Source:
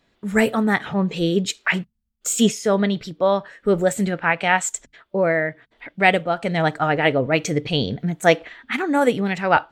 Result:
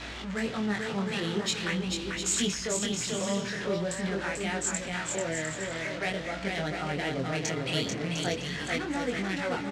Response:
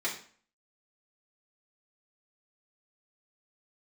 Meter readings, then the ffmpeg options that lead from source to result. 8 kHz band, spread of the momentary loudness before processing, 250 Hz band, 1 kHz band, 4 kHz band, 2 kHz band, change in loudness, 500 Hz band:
-3.0 dB, 7 LU, -10.0 dB, -14.5 dB, -4.0 dB, -10.5 dB, -10.0 dB, -12.5 dB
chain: -filter_complex "[0:a]aeval=exprs='val(0)+0.5*0.0562*sgn(val(0))':c=same,highpass=49,acrossover=split=420|4400[s0][s1][s2];[s0]equalizer=f=210:t=o:w=0.28:g=-2.5[s3];[s1]acompressor=threshold=0.0447:ratio=6[s4];[s3][s4][s2]amix=inputs=3:normalize=0,aeval=exprs='val(0)+0.0251*(sin(2*PI*60*n/s)+sin(2*PI*2*60*n/s)/2+sin(2*PI*3*60*n/s)/3+sin(2*PI*4*60*n/s)/4+sin(2*PI*5*60*n/s)/5)':c=same,adynamicsmooth=sensitivity=3:basefreq=2500,tiltshelf=f=1100:g=-5.5,aecho=1:1:440|704|862.4|957.4|1014:0.631|0.398|0.251|0.158|0.1,flanger=delay=20:depth=5.4:speed=0.45,lowpass=9300,volume=0.596"

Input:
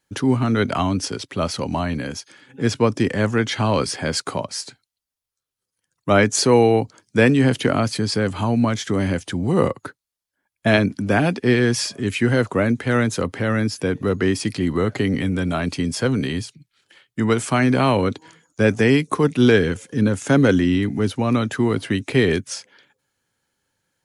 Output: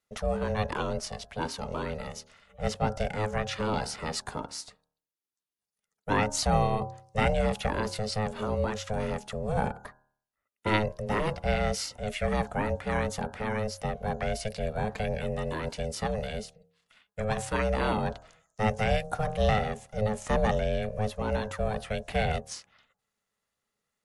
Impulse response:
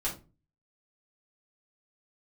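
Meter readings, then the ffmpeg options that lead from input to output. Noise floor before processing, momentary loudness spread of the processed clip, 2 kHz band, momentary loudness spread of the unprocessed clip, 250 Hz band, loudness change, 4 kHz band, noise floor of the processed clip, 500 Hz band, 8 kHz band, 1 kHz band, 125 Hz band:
-85 dBFS, 10 LU, -10.5 dB, 10 LU, -15.5 dB, -10.5 dB, -10.0 dB, under -85 dBFS, -9.5 dB, -10.0 dB, -5.0 dB, -10.5 dB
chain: -af "bandreject=f=74.83:t=h:w=4,bandreject=f=149.66:t=h:w=4,bandreject=f=224.49:t=h:w=4,bandreject=f=299.32:t=h:w=4,bandreject=f=374.15:t=h:w=4,bandreject=f=448.98:t=h:w=4,bandreject=f=523.81:t=h:w=4,bandreject=f=598.64:t=h:w=4,bandreject=f=673.47:t=h:w=4,bandreject=f=748.3:t=h:w=4,bandreject=f=823.13:t=h:w=4,bandreject=f=897.96:t=h:w=4,bandreject=f=972.79:t=h:w=4,bandreject=f=1047.62:t=h:w=4,bandreject=f=1122.45:t=h:w=4,bandreject=f=1197.28:t=h:w=4,bandreject=f=1272.11:t=h:w=4,bandreject=f=1346.94:t=h:w=4,aeval=exprs='val(0)*sin(2*PI*320*n/s)':c=same,volume=0.447"

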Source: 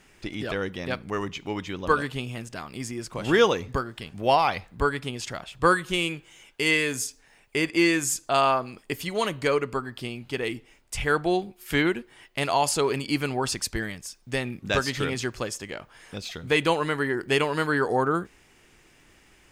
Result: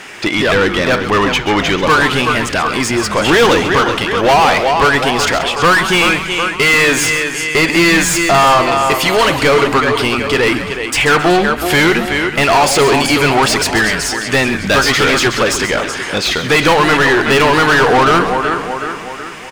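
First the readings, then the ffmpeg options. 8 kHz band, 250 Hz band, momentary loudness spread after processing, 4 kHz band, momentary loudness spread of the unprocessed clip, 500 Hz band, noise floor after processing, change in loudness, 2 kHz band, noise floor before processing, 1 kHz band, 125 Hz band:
+14.0 dB, +13.0 dB, 6 LU, +16.5 dB, 14 LU, +13.0 dB, -23 dBFS, +14.5 dB, +16.5 dB, -58 dBFS, +15.0 dB, +12.5 dB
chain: -filter_complex "[0:a]asplit=2[s0][s1];[s1]aecho=0:1:373|746|1119|1492:0.178|0.0782|0.0344|0.0151[s2];[s0][s2]amix=inputs=2:normalize=0,asplit=2[s3][s4];[s4]highpass=f=720:p=1,volume=31.6,asoftclip=type=tanh:threshold=0.422[s5];[s3][s5]amix=inputs=2:normalize=0,lowpass=f=3700:p=1,volume=0.501,asplit=2[s6][s7];[s7]asplit=3[s8][s9][s10];[s8]adelay=133,afreqshift=-150,volume=0.299[s11];[s9]adelay=266,afreqshift=-300,volume=0.0955[s12];[s10]adelay=399,afreqshift=-450,volume=0.0305[s13];[s11][s12][s13]amix=inputs=3:normalize=0[s14];[s6][s14]amix=inputs=2:normalize=0,volume=1.68"

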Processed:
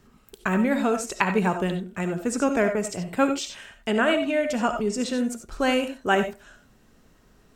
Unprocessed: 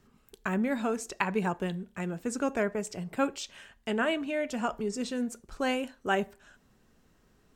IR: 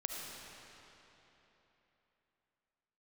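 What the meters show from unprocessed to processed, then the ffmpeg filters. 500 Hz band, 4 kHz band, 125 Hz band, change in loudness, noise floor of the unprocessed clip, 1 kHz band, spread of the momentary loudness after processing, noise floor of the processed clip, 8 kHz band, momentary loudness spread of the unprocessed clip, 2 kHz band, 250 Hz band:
+7.5 dB, +7.0 dB, +6.5 dB, +7.0 dB, -66 dBFS, +7.0 dB, 7 LU, -58 dBFS, +7.0 dB, 7 LU, +7.0 dB, +7.0 dB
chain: -filter_complex "[1:a]atrim=start_sample=2205,atrim=end_sample=4410[s0];[0:a][s0]afir=irnorm=-1:irlink=0,volume=2.66"

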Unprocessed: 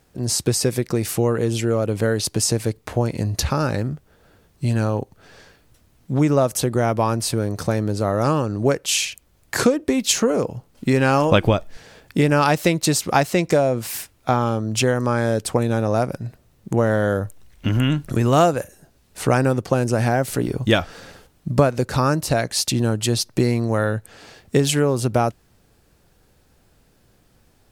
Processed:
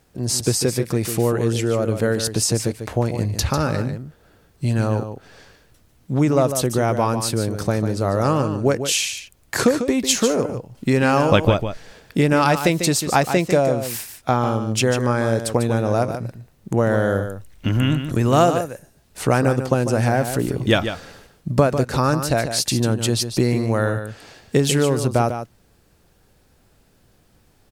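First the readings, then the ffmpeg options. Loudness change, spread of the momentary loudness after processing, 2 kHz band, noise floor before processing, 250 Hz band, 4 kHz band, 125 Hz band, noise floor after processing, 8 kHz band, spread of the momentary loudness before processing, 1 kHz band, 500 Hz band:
+0.5 dB, 10 LU, +0.5 dB, -59 dBFS, +0.5 dB, +0.5 dB, +0.5 dB, -58 dBFS, +0.5 dB, 9 LU, +0.5 dB, +0.5 dB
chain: -af "aecho=1:1:147:0.355"

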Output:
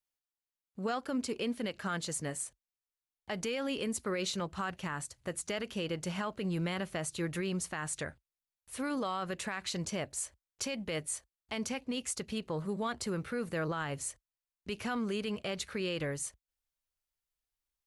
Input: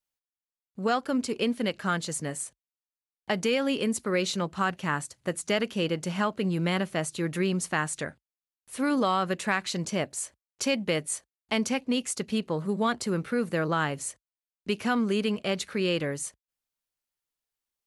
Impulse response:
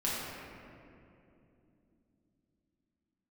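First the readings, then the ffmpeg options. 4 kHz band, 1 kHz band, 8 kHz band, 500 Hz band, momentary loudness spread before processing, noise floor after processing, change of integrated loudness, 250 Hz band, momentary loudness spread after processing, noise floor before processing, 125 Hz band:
-7.0 dB, -9.0 dB, -4.0 dB, -8.0 dB, 8 LU, under -85 dBFS, -7.5 dB, -8.5 dB, 6 LU, under -85 dBFS, -6.5 dB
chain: -af "alimiter=limit=0.0841:level=0:latency=1:release=61,asubboost=boost=5:cutoff=83,volume=0.668"

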